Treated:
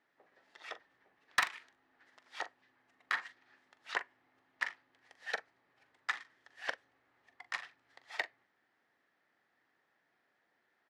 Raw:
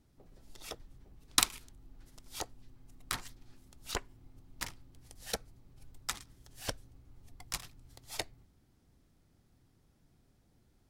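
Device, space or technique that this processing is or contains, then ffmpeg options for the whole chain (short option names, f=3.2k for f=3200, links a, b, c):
megaphone: -filter_complex "[0:a]highpass=700,lowpass=2.6k,equalizer=f=1.8k:t=o:w=0.36:g=11.5,asoftclip=type=hard:threshold=-22dB,asplit=2[a][b];[b]adelay=42,volume=-13dB[c];[a][c]amix=inputs=2:normalize=0,volume=2.5dB"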